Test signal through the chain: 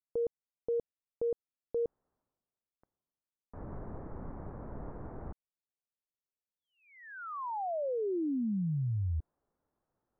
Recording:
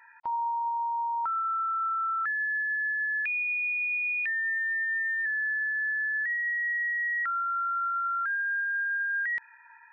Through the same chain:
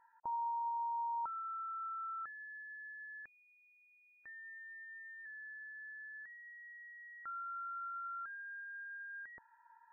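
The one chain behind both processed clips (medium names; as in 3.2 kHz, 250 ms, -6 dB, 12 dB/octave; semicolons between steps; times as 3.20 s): reverse; upward compressor, threshold -46 dBFS; reverse; Gaussian low-pass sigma 8.2 samples; trim -3 dB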